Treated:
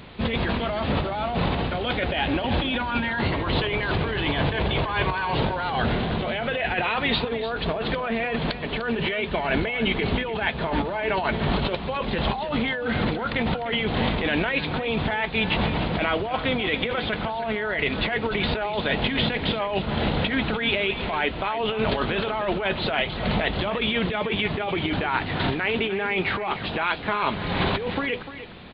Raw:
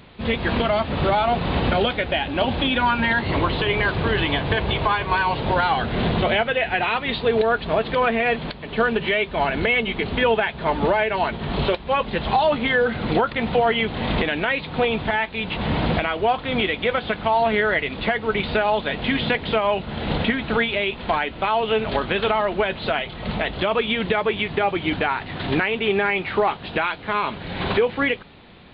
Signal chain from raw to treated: negative-ratio compressor -25 dBFS, ratio -1; on a send: echo 0.299 s -12.5 dB

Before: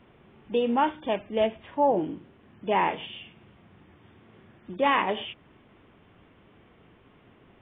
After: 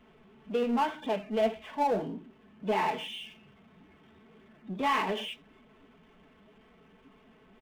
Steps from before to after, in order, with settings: flange 1.8 Hz, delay 2.2 ms, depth 8.7 ms, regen +47%; comb 4.6 ms, depth 83%; power-law curve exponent 0.7; spectral noise reduction 8 dB; gain -6.5 dB

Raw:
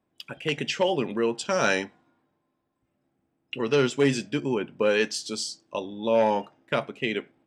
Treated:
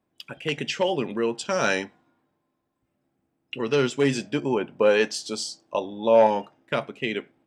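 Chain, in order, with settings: 4.15–6.27 bell 730 Hz +7 dB 1.3 oct

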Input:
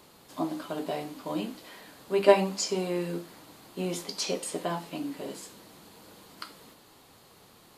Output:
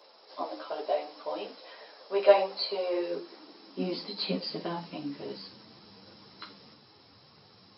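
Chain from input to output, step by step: nonlinear frequency compression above 3900 Hz 4:1; high-pass sweep 540 Hz -> 110 Hz, 2.81–4.95; ensemble effect

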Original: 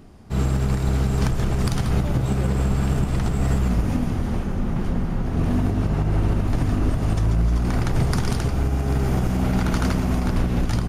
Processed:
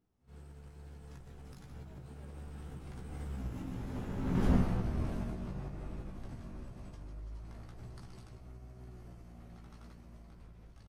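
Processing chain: Doppler pass-by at 4.54, 30 m/s, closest 4.6 m; doubler 16 ms -4 dB; on a send: reverse echo 73 ms -16 dB; on the sum: gain -4 dB

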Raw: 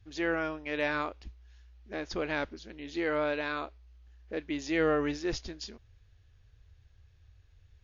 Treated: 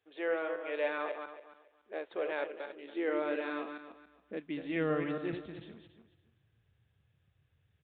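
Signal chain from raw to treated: regenerating reverse delay 0.14 s, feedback 46%, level -6 dB; high-pass sweep 480 Hz -> 150 Hz, 2.61–4.83; downsampling 8000 Hz; gain -7 dB

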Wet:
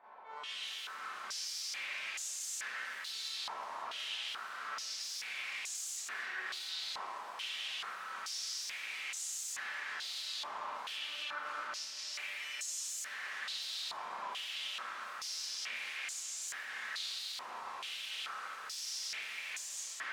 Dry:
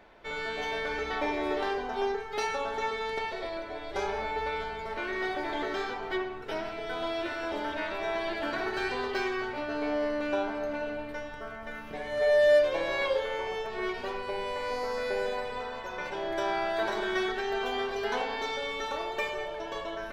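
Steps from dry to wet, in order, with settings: high shelf 2100 Hz +5 dB; limiter -22 dBFS, peak gain reduction 7.5 dB; AGC gain up to 12.5 dB; wrapped overs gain 21.5 dB; chopper 1.4 Hz, depth 65%, duty 30%; wavefolder -36.5 dBFS; on a send: echo with dull and thin repeats by turns 0.129 s, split 1400 Hz, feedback 77%, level -3 dB; on the sum: Schroeder reverb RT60 0.45 s, combs from 29 ms, DRR -7 dB; stepped band-pass 2.3 Hz 990–7000 Hz

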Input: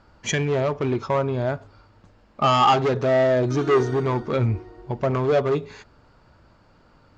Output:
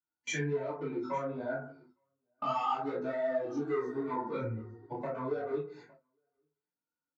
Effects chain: per-bin expansion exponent 1.5; HPF 250 Hz 12 dB/oct; FDN reverb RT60 0.39 s, low-frequency decay 1.25×, high-frequency decay 0.3×, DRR -9.5 dB; compressor 4:1, threshold -23 dBFS, peak gain reduction 16.5 dB; doubler 28 ms -6.5 dB; echo 0.859 s -23.5 dB; gate with hold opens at -25 dBFS; detuned doubles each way 25 cents; gain -7 dB

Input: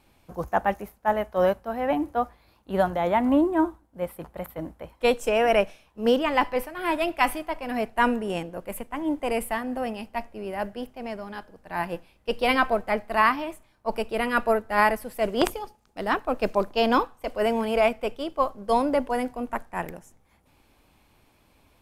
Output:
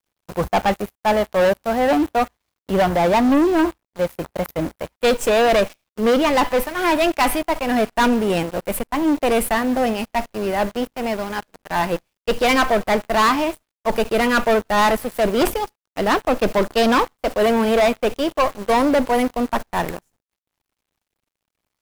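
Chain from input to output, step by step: bit-crush 9-bit; sample leveller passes 5; gain -7 dB

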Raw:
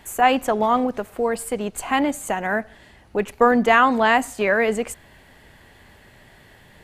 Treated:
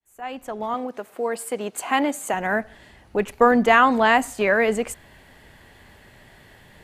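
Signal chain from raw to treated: opening faded in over 1.76 s; 0.74–2.34 HPF 250 Hz 12 dB/oct

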